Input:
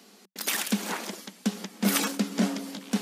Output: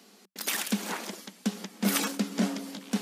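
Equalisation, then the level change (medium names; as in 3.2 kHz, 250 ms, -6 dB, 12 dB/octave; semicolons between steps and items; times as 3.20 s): flat; -2.0 dB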